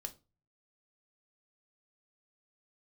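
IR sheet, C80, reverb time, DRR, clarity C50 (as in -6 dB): 24.5 dB, 0.30 s, 5.5 dB, 18.0 dB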